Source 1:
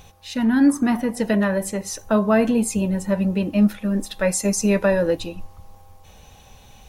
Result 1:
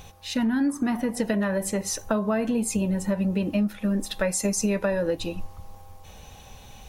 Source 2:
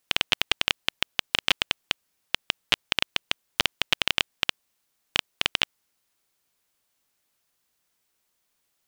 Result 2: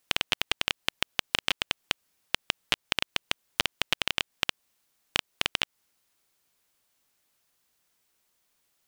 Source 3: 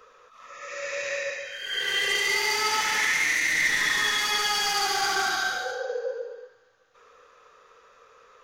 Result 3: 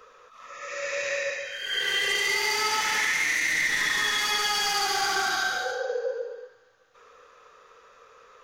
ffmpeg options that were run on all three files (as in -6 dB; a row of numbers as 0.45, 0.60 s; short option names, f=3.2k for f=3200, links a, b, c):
-af "acompressor=threshold=-23dB:ratio=6,volume=1.5dB"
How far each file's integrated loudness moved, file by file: -5.0, -3.5, -0.5 LU